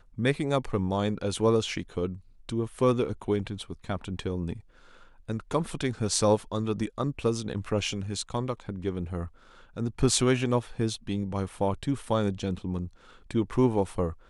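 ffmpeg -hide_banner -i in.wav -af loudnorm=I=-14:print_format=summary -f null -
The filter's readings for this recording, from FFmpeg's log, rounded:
Input Integrated:    -29.2 LUFS
Input True Peak:      -7.6 dBTP
Input LRA:             3.9 LU
Input Threshold:     -39.5 LUFS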